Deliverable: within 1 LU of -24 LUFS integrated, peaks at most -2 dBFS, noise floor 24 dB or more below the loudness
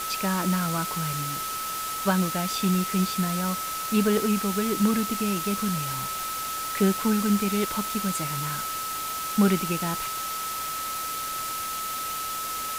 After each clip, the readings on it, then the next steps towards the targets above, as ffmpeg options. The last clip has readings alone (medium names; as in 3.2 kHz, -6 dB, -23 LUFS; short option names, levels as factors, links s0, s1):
steady tone 1.3 kHz; tone level -31 dBFS; noise floor -32 dBFS; noise floor target -51 dBFS; loudness -26.5 LUFS; peak level -10.0 dBFS; loudness target -24.0 LUFS
-> -af "bandreject=f=1300:w=30"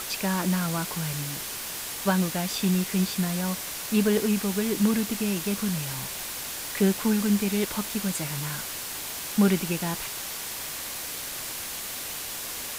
steady tone not found; noise floor -35 dBFS; noise floor target -52 dBFS
-> -af "afftdn=nr=17:nf=-35"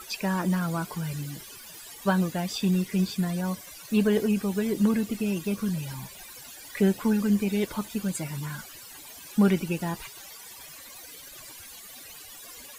noise floor -46 dBFS; noise floor target -52 dBFS
-> -af "afftdn=nr=6:nf=-46"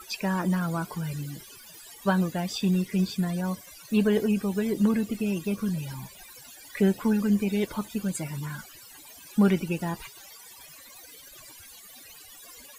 noise floor -49 dBFS; noise floor target -52 dBFS
-> -af "afftdn=nr=6:nf=-49"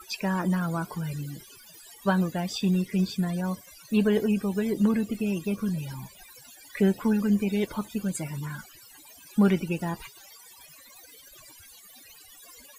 noise floor -52 dBFS; loudness -27.5 LUFS; peak level -11.5 dBFS; loudness target -24.0 LUFS
-> -af "volume=1.5"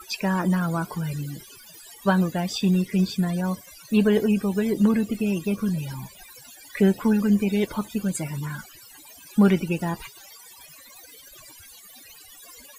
loudness -24.0 LUFS; peak level -8.0 dBFS; noise floor -48 dBFS